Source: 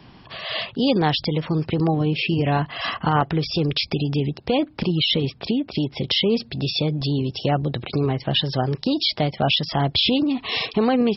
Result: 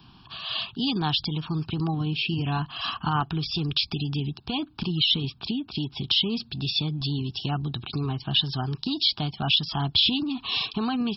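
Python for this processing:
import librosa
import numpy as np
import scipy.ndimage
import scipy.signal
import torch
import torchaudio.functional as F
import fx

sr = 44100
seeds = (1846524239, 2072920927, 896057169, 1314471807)

y = fx.high_shelf(x, sr, hz=3800.0, db=8.5)
y = fx.fixed_phaser(y, sr, hz=2000.0, stages=6)
y = F.gain(torch.from_numpy(y), -4.0).numpy()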